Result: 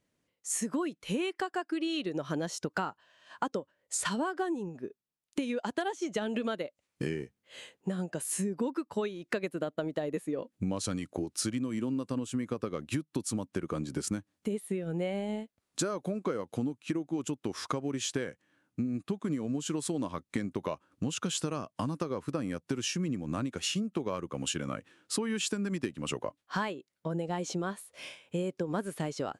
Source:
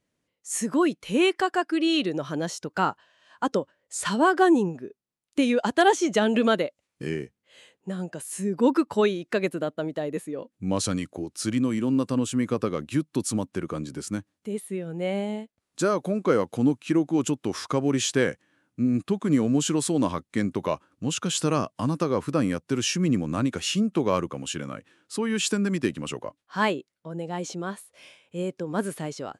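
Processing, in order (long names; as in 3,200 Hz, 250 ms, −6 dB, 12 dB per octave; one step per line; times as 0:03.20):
speech leveller within 3 dB 2 s
transient designer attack +2 dB, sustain −4 dB
downward compressor 12 to 1, threshold −31 dBFS, peak gain reduction 18 dB
level +2 dB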